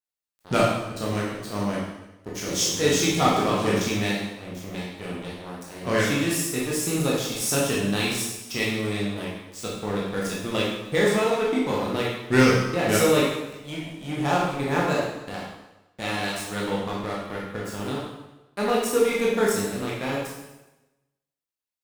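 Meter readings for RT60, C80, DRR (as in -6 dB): 1.0 s, 3.5 dB, -5.5 dB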